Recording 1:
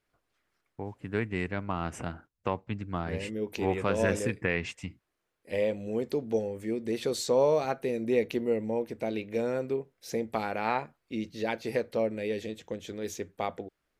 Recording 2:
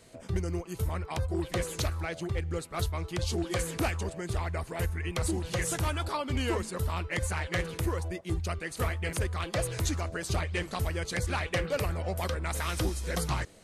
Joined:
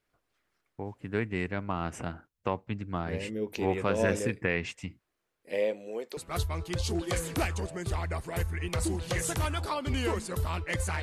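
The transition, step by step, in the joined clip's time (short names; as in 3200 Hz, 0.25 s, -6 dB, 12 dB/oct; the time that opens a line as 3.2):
recording 1
5.48–6.17 HPF 200 Hz -> 730 Hz
6.17 switch to recording 2 from 2.6 s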